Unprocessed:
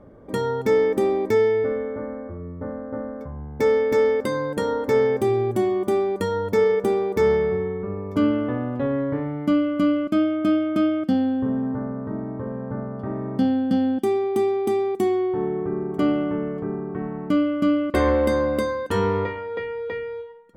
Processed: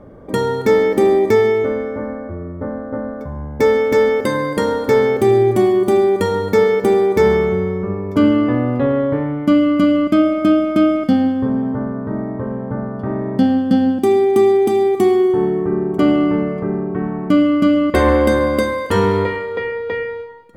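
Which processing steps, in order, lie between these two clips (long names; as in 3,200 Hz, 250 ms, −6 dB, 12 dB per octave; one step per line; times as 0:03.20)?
four-comb reverb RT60 1.3 s, combs from 33 ms, DRR 8.5 dB
level +7 dB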